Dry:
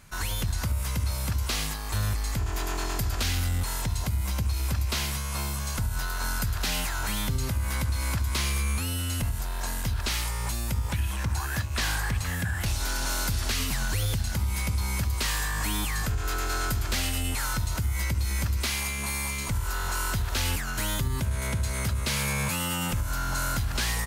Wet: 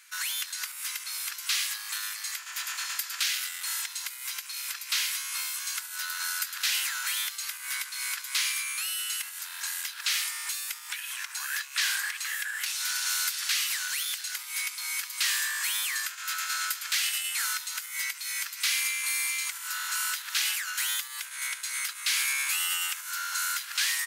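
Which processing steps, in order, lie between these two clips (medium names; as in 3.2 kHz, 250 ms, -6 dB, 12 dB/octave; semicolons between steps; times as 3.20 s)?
high-pass 1.5 kHz 24 dB/octave; trim +3.5 dB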